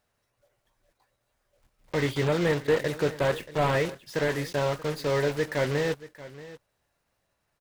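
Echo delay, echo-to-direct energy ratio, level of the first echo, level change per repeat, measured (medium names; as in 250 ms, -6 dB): 631 ms, -17.0 dB, -17.0 dB, no regular repeats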